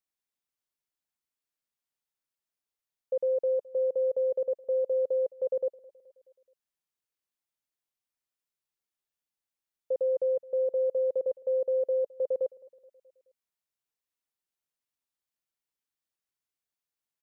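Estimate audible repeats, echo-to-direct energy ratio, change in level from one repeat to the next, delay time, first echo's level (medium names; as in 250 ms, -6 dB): 3, -20.5 dB, -5.5 dB, 213 ms, -22.0 dB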